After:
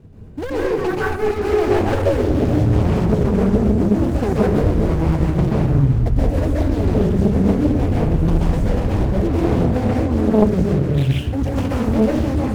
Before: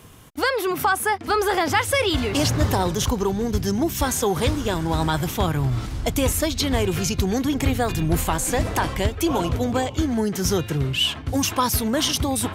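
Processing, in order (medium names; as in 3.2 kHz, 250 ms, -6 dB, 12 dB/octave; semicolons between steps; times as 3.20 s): median filter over 41 samples; bass shelf 270 Hz +7.5 dB; peak limiter -13.5 dBFS, peak gain reduction 9 dB; plate-style reverb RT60 0.78 s, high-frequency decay 0.55×, pre-delay 115 ms, DRR -5.5 dB; loudspeaker Doppler distortion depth 0.88 ms; trim -1 dB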